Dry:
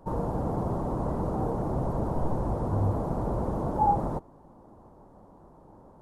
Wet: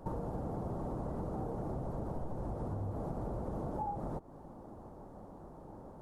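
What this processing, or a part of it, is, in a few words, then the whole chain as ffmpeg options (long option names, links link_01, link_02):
serial compression, leveller first: -af "equalizer=frequency=1000:width=6.4:gain=-5.5,acompressor=threshold=-35dB:ratio=1.5,acompressor=threshold=-38dB:ratio=6,volume=2.5dB"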